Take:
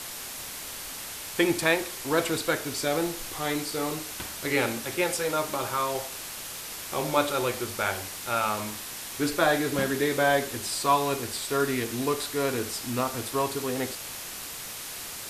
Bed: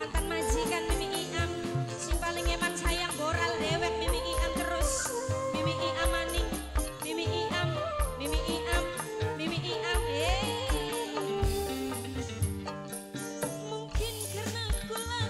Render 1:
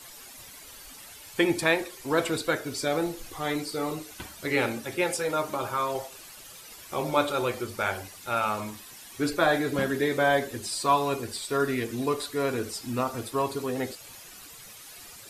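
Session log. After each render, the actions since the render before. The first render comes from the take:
broadband denoise 12 dB, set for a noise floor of −38 dBFS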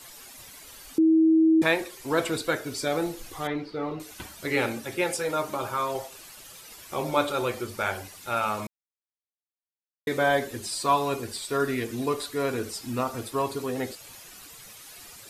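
0:00.98–0:01.62: beep over 321 Hz −15.5 dBFS
0:03.47–0:04.00: high-frequency loss of the air 300 metres
0:08.67–0:10.07: silence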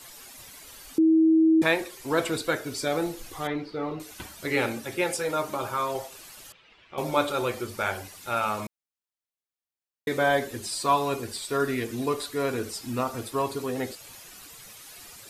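0:06.52–0:06.98: transistor ladder low-pass 3,500 Hz, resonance 40%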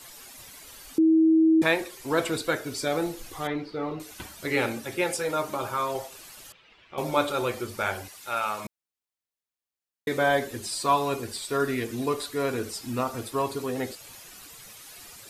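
0:08.08–0:08.65: low-shelf EQ 370 Hz −11.5 dB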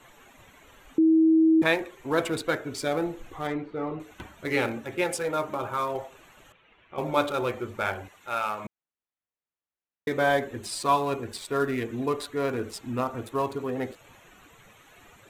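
adaptive Wiener filter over 9 samples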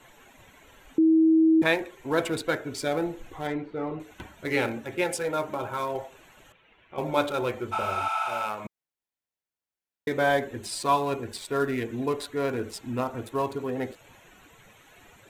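notch filter 1,200 Hz, Q 11
0:07.75–0:08.39: healed spectral selection 630–12,000 Hz after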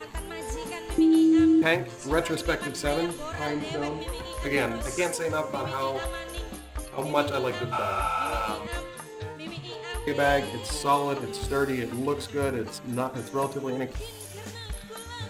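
mix in bed −5 dB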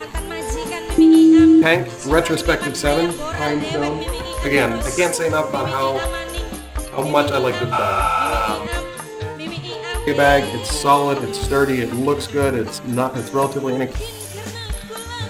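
level +9.5 dB
brickwall limiter −2 dBFS, peak gain reduction 2 dB

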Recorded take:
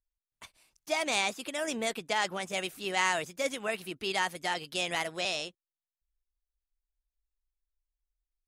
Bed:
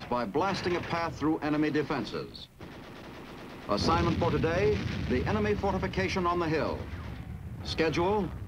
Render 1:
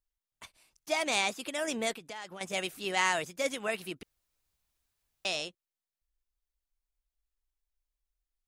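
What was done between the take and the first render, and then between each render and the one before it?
0:01.93–0:02.41: downward compressor 2.5 to 1, threshold −45 dBFS
0:04.03–0:05.25: fill with room tone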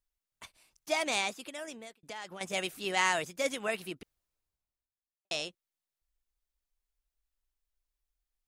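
0:00.95–0:02.03: fade out
0:03.66–0:05.31: fade out and dull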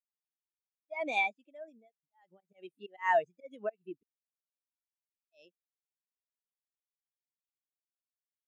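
volume swells 187 ms
every bin expanded away from the loudest bin 2.5 to 1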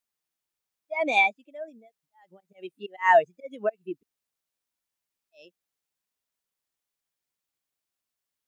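level +9 dB

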